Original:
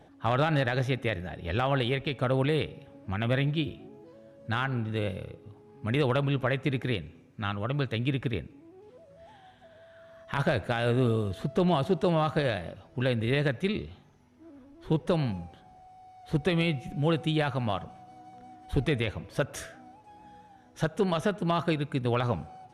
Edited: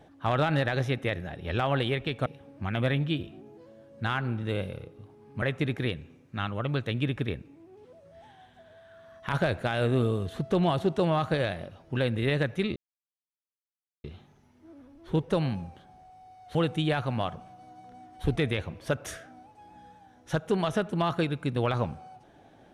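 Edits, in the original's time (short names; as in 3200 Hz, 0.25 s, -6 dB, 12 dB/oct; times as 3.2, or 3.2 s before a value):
2.26–2.73 cut
5.89–6.47 cut
13.81 insert silence 1.28 s
16.32–17.04 cut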